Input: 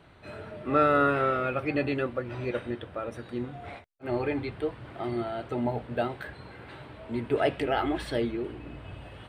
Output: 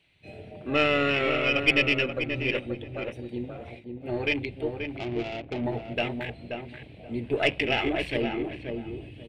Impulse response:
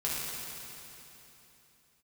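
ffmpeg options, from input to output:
-filter_complex "[0:a]afwtdn=0.0141,asettb=1/sr,asplit=3[link_01][link_02][link_03];[link_01]atrim=end=4.974[link_04];[link_02]atrim=start=4.97:end=5.65,asetpts=PTS-STARTPTS,afade=type=in:duration=0.004:curve=qsin,afade=type=out:start_time=0.676:duration=0.004:curve=qsin,adynamicsmooth=sensitivity=4.5:basefreq=610[link_05];[link_03]atrim=start=5.646[link_06];[link_04][link_05]acrossfade=duration=0.004:curve1=hsin:curve2=qsin[link_07];[link_07][link_06]acrossfade=duration=0.004:curve1=qsin:curve2=hsin,highshelf=frequency=1800:width_type=q:width=3:gain=10.5,aeval=exprs='0.447*(cos(1*acos(clip(val(0)/0.447,-1,1)))-cos(1*PI/2))+0.0355*(cos(4*acos(clip(val(0)/0.447,-1,1)))-cos(4*PI/2))':channel_layout=same,asplit=2[link_08][link_09];[link_09]adelay=531,lowpass=frequency=1500:poles=1,volume=-5dB,asplit=2[link_10][link_11];[link_11]adelay=531,lowpass=frequency=1500:poles=1,volume=0.22,asplit=2[link_12][link_13];[link_13]adelay=531,lowpass=frequency=1500:poles=1,volume=0.22[link_14];[link_08][link_10][link_12][link_14]amix=inputs=4:normalize=0"

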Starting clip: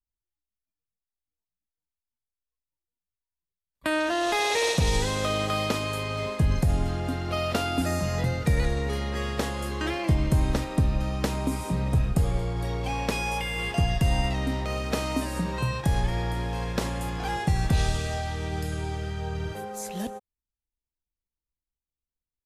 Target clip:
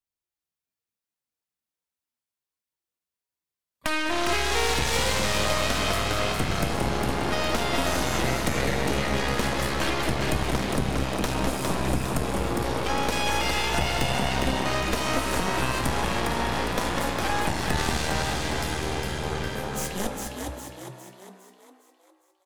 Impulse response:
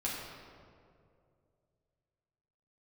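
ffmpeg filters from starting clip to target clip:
-filter_complex "[0:a]highpass=frequency=220:poles=1,aecho=1:1:202:0.355,asplit=2[link_01][link_02];[1:a]atrim=start_sample=2205,atrim=end_sample=3969[link_03];[link_02][link_03]afir=irnorm=-1:irlink=0,volume=-6dB[link_04];[link_01][link_04]amix=inputs=2:normalize=0,acompressor=threshold=-25dB:ratio=6,aeval=exprs='0.282*(cos(1*acos(clip(val(0)/0.282,-1,1)))-cos(1*PI/2))+0.0708*(cos(8*acos(clip(val(0)/0.282,-1,1)))-cos(8*PI/2))':channel_layout=same,asplit=2[link_05][link_06];[link_06]asplit=6[link_07][link_08][link_09][link_10][link_11][link_12];[link_07]adelay=407,afreqshift=63,volume=-4dB[link_13];[link_08]adelay=814,afreqshift=126,volume=-10.7dB[link_14];[link_09]adelay=1221,afreqshift=189,volume=-17.5dB[link_15];[link_10]adelay=1628,afreqshift=252,volume=-24.2dB[link_16];[link_11]adelay=2035,afreqshift=315,volume=-31dB[link_17];[link_12]adelay=2442,afreqshift=378,volume=-37.7dB[link_18];[link_13][link_14][link_15][link_16][link_17][link_18]amix=inputs=6:normalize=0[link_19];[link_05][link_19]amix=inputs=2:normalize=0,volume=-1dB"

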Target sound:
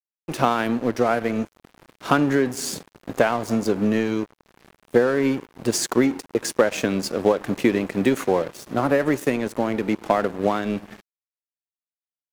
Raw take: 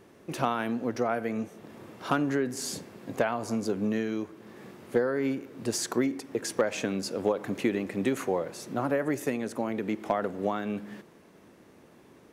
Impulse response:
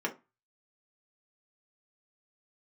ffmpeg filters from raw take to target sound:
-af "acontrast=43,aeval=exprs='sgn(val(0))*max(abs(val(0))-0.015,0)':channel_layout=same,volume=3.5dB"

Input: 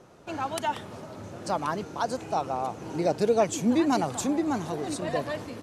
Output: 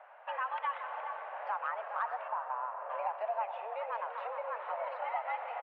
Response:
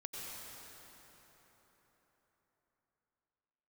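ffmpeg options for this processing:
-filter_complex "[0:a]acompressor=threshold=-32dB:ratio=6,asplit=2[link_01][link_02];[link_02]adelay=419.8,volume=-9dB,highshelf=frequency=4000:gain=-9.45[link_03];[link_01][link_03]amix=inputs=2:normalize=0,asettb=1/sr,asplit=3[link_04][link_05][link_06];[link_04]atrim=end=2.284[link_07];[link_05]atrim=start=2.28:end=2.9,asetpts=PTS-STARTPTS,afade=type=in:duration=0.004:curve=qsin,afade=type=out:start_time=0.616:duration=0.004:curve=qsin,adynamicsmooth=sensitivity=0.5:basefreq=1200[link_08];[link_06]atrim=start=2.896[link_09];[link_07][link_08]acrossfade=duration=0.004:curve1=hsin:curve2=qsin[link_10];[link_10][link_09]acrossfade=duration=0.004:curve1=qsin:curve2=hsin,asplit=2[link_11][link_12];[1:a]atrim=start_sample=2205[link_13];[link_12][link_13]afir=irnorm=-1:irlink=0,volume=-5dB[link_14];[link_11][link_14]amix=inputs=2:normalize=0,highpass=frequency=380:width_type=q:width=0.5412,highpass=frequency=380:width_type=q:width=1.307,lowpass=frequency=2400:width_type=q:width=0.5176,lowpass=frequency=2400:width_type=q:width=0.7071,lowpass=frequency=2400:width_type=q:width=1.932,afreqshift=230,volume=-1.5dB"

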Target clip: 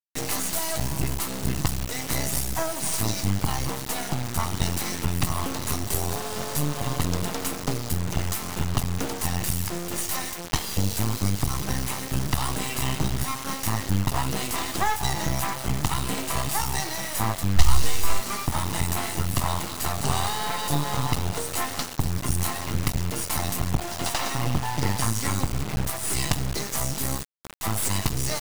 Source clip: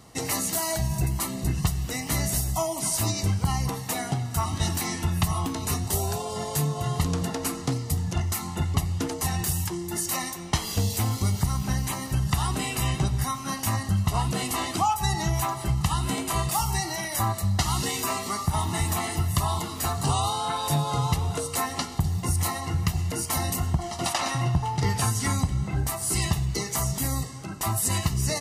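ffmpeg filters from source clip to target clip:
ffmpeg -i in.wav -filter_complex "[0:a]asettb=1/sr,asplit=3[link_01][link_02][link_03];[link_01]atrim=end=27.174[link_04];[link_02]atrim=start=27.17:end=27.64,asetpts=PTS-STARTPTS,afade=type=in:duration=0.004:curve=qsin,afade=type=out:start_time=0.466:duration=0.004:curve=qsin,aeval=exprs='0.168*(cos(1*acos(clip(val(0)/0.168,-1,1)))-cos(1*PI/2))+0.0335*(cos(3*acos(clip(val(0)/0.168,-1,1)))-cos(3*PI/2))+0.00335*(cos(4*acos(clip(val(0)/0.168,-1,1)))-cos(4*PI/2))+0.00299*(cos(6*acos(clip(val(0)/0.168,-1,1)))-cos(6*PI/2))':channel_layout=same[link_05];[link_03]atrim=start=27.636[link_06];[link_04][link_05]acrossfade=duration=0.004:curve1=hsin:curve2=qsin[link_07];[link_07][link_06]acrossfade=duration=0.004:curve1=qsin:curve2=hsin,acrusher=bits=3:dc=4:mix=0:aa=0.000001,asplit=3[link_08][link_09][link_10];[link_08]afade=type=out:start_time=17.56:duration=0.02[link_11];[link_09]asubboost=boost=8.5:cutoff=67,afade=type=in:start_time=17.56:duration=0.02,afade=type=out:start_time=18.19:duration=0.02[link_12];[link_10]afade=type=in:start_time=18.19:duration=0.02[link_13];[link_11][link_12][link_13]amix=inputs=3:normalize=0,volume=3.5dB" out.wav

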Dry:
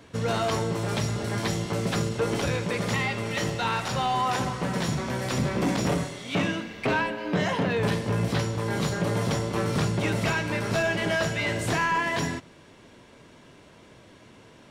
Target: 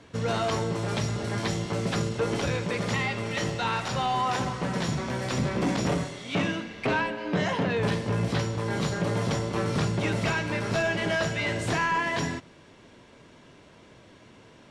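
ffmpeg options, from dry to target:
ffmpeg -i in.wav -af "lowpass=8600,volume=-1dB" out.wav

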